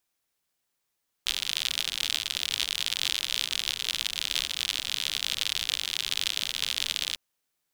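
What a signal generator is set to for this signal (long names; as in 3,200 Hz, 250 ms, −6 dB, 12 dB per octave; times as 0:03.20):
rain-like ticks over hiss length 5.90 s, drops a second 71, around 3,400 Hz, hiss −21 dB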